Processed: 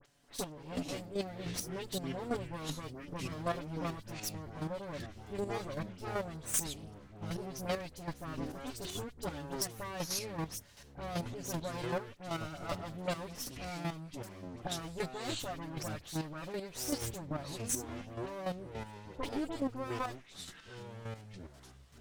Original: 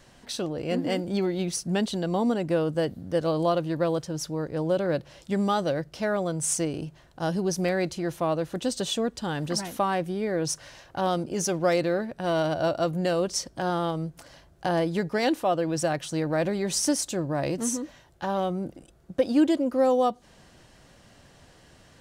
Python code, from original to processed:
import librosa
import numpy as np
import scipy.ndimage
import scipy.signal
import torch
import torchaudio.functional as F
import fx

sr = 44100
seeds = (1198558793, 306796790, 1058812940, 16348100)

y = fx.lower_of_two(x, sr, delay_ms=7.0)
y = fx.high_shelf(y, sr, hz=4800.0, db=7.0)
y = fx.dispersion(y, sr, late='highs', ms=52.0, hz=2600.0)
y = fx.chopper(y, sr, hz=2.6, depth_pct=65, duty_pct=15)
y = fx.echo_pitch(y, sr, ms=307, semitones=-7, count=2, db_per_echo=-6.0)
y = y * librosa.db_to_amplitude(-7.0)